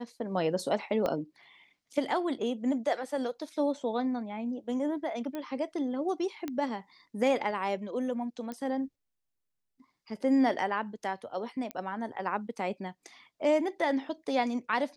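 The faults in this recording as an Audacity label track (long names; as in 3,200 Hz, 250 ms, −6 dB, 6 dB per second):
1.060000	1.060000	click −18 dBFS
5.350000	5.350000	click −24 dBFS
6.480000	6.480000	click −21 dBFS
8.520000	8.520000	click −25 dBFS
11.710000	11.710000	click −21 dBFS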